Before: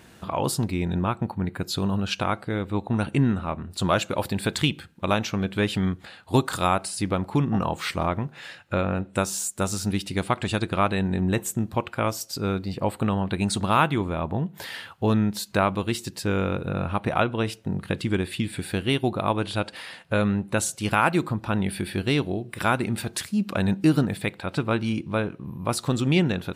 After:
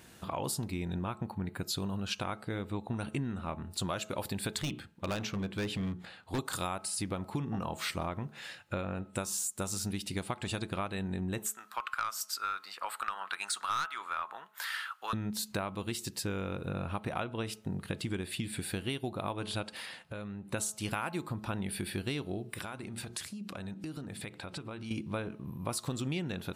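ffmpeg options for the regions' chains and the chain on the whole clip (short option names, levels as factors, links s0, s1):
-filter_complex "[0:a]asettb=1/sr,asplit=3[s0][s1][s2];[s0]atrim=end=4.594[s3];[s1]atrim=start=4.59:end=6.39,asetpts=PTS-STARTPTS,afade=t=in:d=0.004:c=qsin,afade=t=out:st=1.796:d=0.004:c=qsin,aemphasis=mode=reproduction:type=cd,bandreject=f=60:t=h:w=6,bandreject=f=120:t=h:w=6,bandreject=f=180:t=h:w=6,bandreject=f=240:t=h:w=6,bandreject=f=300:t=h:w=6,bandreject=f=360:t=h:w=6,bandreject=f=420:t=h:w=6,volume=11.2,asoftclip=hard,volume=0.0891[s4];[s2]atrim=start=6.386[s5];[s3][s4]acrossfade=d=0.004:c1=hsin:c2=qsin[s6];[s6][s5]acrossfade=d=0.004:c1=qsin:c2=hsin,asettb=1/sr,asplit=3[s7][s8][s9];[s7]atrim=end=11.464[s10];[s8]atrim=start=11.46:end=15.13,asetpts=PTS-STARTPTS,afade=t=in:d=0.004:c=qsin,afade=t=out:st=3.666:d=0.004:c=qsin,highpass=f=1300:t=q:w=4.5,aeval=exprs='(tanh(3.55*val(0)+0.15)-tanh(0.15))/3.55':c=same[s11];[s9]atrim=start=15.126[s12];[s10][s11]acrossfade=d=0.004:c1=hsin:c2=qsin[s13];[s13][s12]acrossfade=d=0.004:c1=qsin:c2=hsin,asettb=1/sr,asplit=3[s14][s15][s16];[s14]atrim=end=19.864[s17];[s15]atrim=start=19.86:end=20.49,asetpts=PTS-STARTPTS,afade=t=in:d=0.004:c=qsin,afade=t=out:st=0.626:d=0.004:c=qsin,highshelf=f=6600:g=-5.5,acompressor=threshold=0.0224:ratio=4:attack=3.2:release=140:knee=1:detection=peak[s18];[s16]atrim=start=20.486[s19];[s17][s18]acrossfade=d=0.004:c1=hsin:c2=qsin[s20];[s20][s19]acrossfade=d=0.004:c1=qsin:c2=hsin,asettb=1/sr,asplit=3[s21][s22][s23];[s21]atrim=end=22.604[s24];[s22]atrim=start=22.6:end=24.91,asetpts=PTS-STARTPTS,afade=t=in:d=0.004:c=qsin,afade=t=out:st=2.306:d=0.004:c=qsin,lowpass=11000,bandreject=f=60:t=h:w=6,bandreject=f=120:t=h:w=6,bandreject=f=180:t=h:w=6,bandreject=f=240:t=h:w=6,bandreject=f=300:t=h:w=6,bandreject=f=360:t=h:w=6,acompressor=threshold=0.0251:ratio=6:attack=3.2:release=140:knee=1:detection=peak[s25];[s23]atrim=start=24.906[s26];[s24][s25]acrossfade=d=0.004:c1=hsin:c2=qsin[s27];[s27][s26]acrossfade=d=0.004:c1=qsin:c2=hsin,highshelf=f=4600:g=7,bandreject=f=214.3:t=h:w=4,bandreject=f=428.6:t=h:w=4,bandreject=f=642.9:t=h:w=4,bandreject=f=857.2:t=h:w=4,bandreject=f=1071.5:t=h:w=4,bandreject=f=1285.8:t=h:w=4,acompressor=threshold=0.0562:ratio=6,volume=0.501"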